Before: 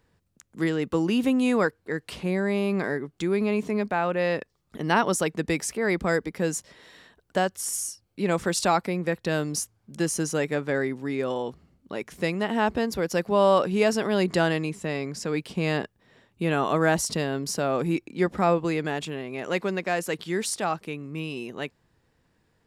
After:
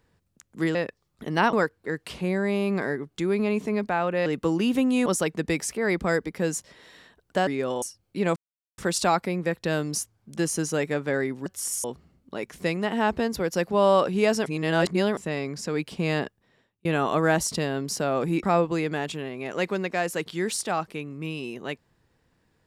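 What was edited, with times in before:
0:00.75–0:01.55: swap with 0:04.28–0:05.06
0:07.47–0:07.85: swap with 0:11.07–0:11.42
0:08.39: splice in silence 0.42 s
0:14.04–0:14.75: reverse
0:15.79–0:16.43: fade out
0:18.01–0:18.36: remove

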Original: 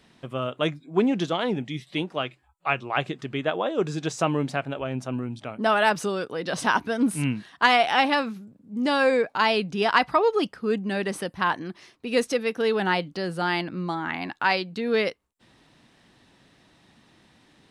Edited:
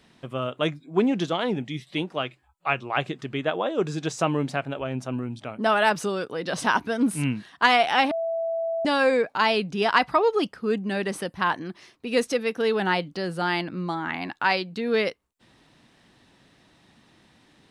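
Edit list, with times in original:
0:08.11–0:08.85: beep over 661 Hz −24 dBFS

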